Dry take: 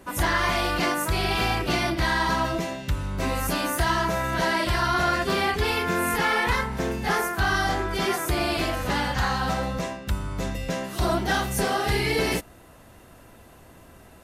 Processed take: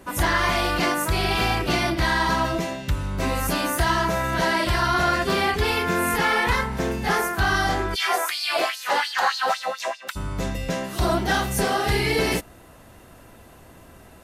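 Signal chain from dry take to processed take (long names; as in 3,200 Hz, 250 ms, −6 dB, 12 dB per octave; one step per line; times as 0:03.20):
0:07.94–0:10.15: auto-filter high-pass sine 1.8 Hz → 6.4 Hz 530–4,800 Hz
level +2 dB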